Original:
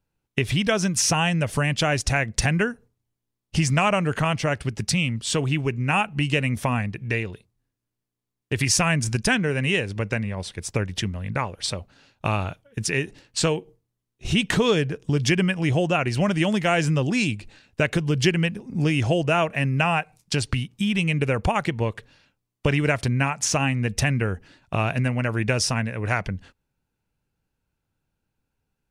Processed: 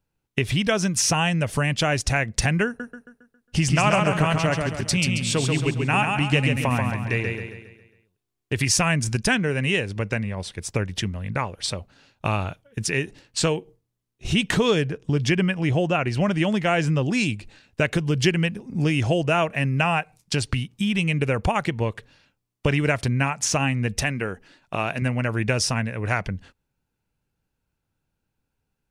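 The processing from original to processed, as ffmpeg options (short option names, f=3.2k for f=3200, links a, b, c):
-filter_complex "[0:a]asettb=1/sr,asplit=3[a][b][c];[a]atrim=end=2.664[d];[b]atrim=start=2.66:end=8.61,asetpts=PTS-STARTPTS,afade=t=in:d=0.004:c=qsin,afade=t=out:st=5.946:d=0.004:c=qsin,aecho=1:1:136|272|408|544|680|816:0.631|0.284|0.128|0.0575|0.0259|0.0116,atrim=end_sample=262395[e];[c]atrim=start=8.606[f];[d][e]acrossfade=d=0.004:c1=hsin:c2=qsin[g];[g][f]acrossfade=d=0.004:c1=qsin:c2=hsin,asettb=1/sr,asplit=3[h][i][j];[h]atrim=end=14.914[k];[i]atrim=start=14.91:end=17.1,asetpts=PTS-STARTPTS,afade=t=in:d=0.004:c=qsin,afade=t=out:st=2.186:d=0.004:c=qsin,highshelf=f=5.7k:g=-8[l];[j]atrim=start=17.096[m];[k][l]acrossfade=d=0.004:c1=hsin:c2=qsin[n];[n][m]acrossfade=d=0.004:c1=qsin:c2=hsin,asettb=1/sr,asplit=3[o][p][q];[o]atrim=end=24.024[r];[p]atrim=start=24.02:end=25.02,asetpts=PTS-STARTPTS,afade=t=in:d=0.004:c=qsin,afade=t=out:st=0.996:d=0.004:c=qsin,equalizer=f=67:w=0.64:g=-13.5[s];[q]atrim=start=25.016[t];[r][s]acrossfade=d=0.004:c1=hsin:c2=qsin[u];[u][t]acrossfade=d=0.004:c1=qsin:c2=hsin"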